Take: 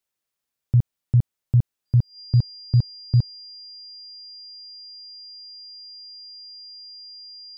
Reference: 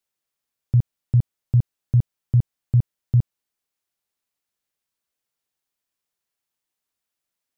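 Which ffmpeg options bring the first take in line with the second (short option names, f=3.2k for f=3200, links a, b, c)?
-af "bandreject=f=4.8k:w=30"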